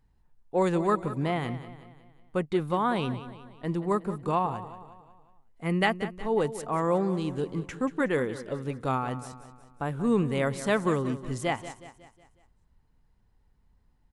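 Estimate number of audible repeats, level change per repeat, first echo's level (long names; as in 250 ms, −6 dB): 4, −6.5 dB, −13.5 dB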